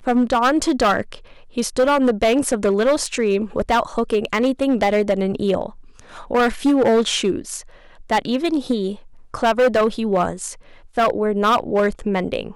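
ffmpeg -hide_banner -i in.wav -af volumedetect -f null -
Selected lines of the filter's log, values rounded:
mean_volume: -19.5 dB
max_volume: -11.5 dB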